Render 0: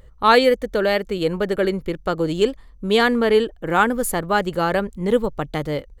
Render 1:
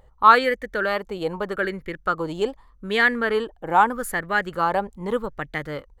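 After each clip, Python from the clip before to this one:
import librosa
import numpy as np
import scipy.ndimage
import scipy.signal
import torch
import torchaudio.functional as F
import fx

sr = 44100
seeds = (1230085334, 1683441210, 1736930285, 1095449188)

y = fx.bell_lfo(x, sr, hz=0.82, low_hz=800.0, high_hz=1900.0, db=15)
y = y * librosa.db_to_amplitude(-8.0)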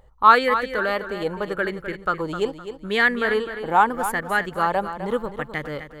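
y = fx.echo_feedback(x, sr, ms=256, feedback_pct=30, wet_db=-10.5)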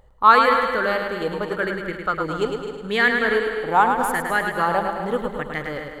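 y = fx.echo_feedback(x, sr, ms=106, feedback_pct=53, wet_db=-5.5)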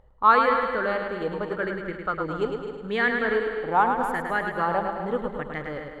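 y = fx.lowpass(x, sr, hz=1900.0, slope=6)
y = y * librosa.db_to_amplitude(-3.0)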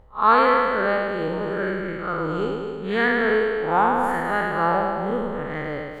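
y = fx.spec_blur(x, sr, span_ms=113.0)
y = y * librosa.db_to_amplitude(6.0)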